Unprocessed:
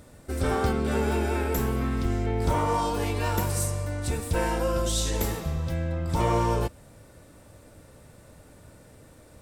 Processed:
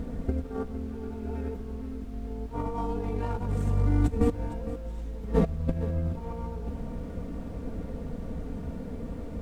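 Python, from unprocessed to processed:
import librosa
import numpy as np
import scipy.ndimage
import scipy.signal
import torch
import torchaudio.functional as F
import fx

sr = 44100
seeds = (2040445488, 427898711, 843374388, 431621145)

p1 = scipy.signal.medfilt(x, 9)
p2 = scipy.signal.sosfilt(scipy.signal.butter(2, 12000.0, 'lowpass', fs=sr, output='sos'), p1)
p3 = fx.tilt_shelf(p2, sr, db=9.0, hz=650.0)
p4 = p3 + 0.84 * np.pad(p3, (int(4.3 * sr / 1000.0), 0))[:len(p3)]
p5 = fx.over_compress(p4, sr, threshold_db=-26.0, ratio=-0.5)
p6 = fx.dmg_noise_colour(p5, sr, seeds[0], colour='brown', level_db=-43.0)
p7 = p6 + fx.echo_single(p6, sr, ms=459, db=-13.0, dry=0)
y = p7 * librosa.db_to_amplitude(-1.5)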